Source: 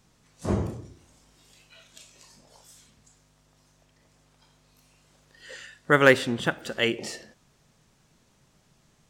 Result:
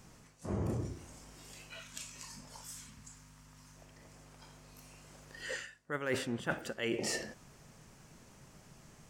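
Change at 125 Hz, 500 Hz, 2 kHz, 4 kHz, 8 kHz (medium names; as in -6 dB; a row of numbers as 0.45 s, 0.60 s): -8.0 dB, -13.5 dB, -14.0 dB, -10.5 dB, -0.5 dB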